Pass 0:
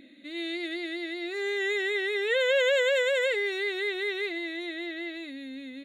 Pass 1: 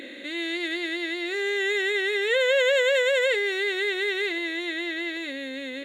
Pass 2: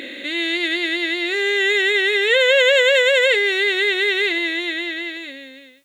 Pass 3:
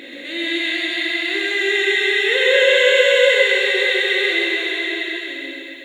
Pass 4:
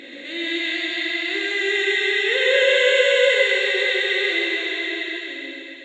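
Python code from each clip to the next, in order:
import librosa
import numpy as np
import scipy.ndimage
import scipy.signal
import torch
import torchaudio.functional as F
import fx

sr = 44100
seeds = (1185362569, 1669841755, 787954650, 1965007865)

y1 = fx.bin_compress(x, sr, power=0.6)
y1 = y1 * librosa.db_to_amplitude(1.5)
y2 = fx.fade_out_tail(y1, sr, length_s=1.42)
y2 = fx.peak_eq(y2, sr, hz=2900.0, db=5.0, octaves=1.2)
y2 = fx.quant_dither(y2, sr, seeds[0], bits=12, dither='triangular')
y2 = y2 * librosa.db_to_amplitude(5.5)
y3 = y2 + 10.0 ** (-4.0 / 20.0) * np.pad(y2, (int(132 * sr / 1000.0), 0))[:len(y2)]
y3 = fx.rev_plate(y3, sr, seeds[1], rt60_s=3.2, hf_ratio=0.9, predelay_ms=0, drr_db=-4.0)
y3 = y3 * librosa.db_to_amplitude(-6.0)
y4 = fx.brickwall_lowpass(y3, sr, high_hz=8300.0)
y4 = y4 * librosa.db_to_amplitude(-3.0)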